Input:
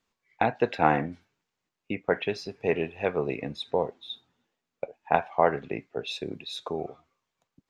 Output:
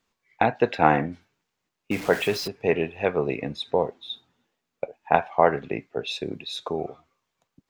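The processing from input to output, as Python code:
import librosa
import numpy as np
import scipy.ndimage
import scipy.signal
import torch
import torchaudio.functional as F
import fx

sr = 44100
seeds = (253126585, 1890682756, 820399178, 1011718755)

y = fx.zero_step(x, sr, step_db=-33.5, at=(1.91, 2.48))
y = F.gain(torch.from_numpy(y), 3.5).numpy()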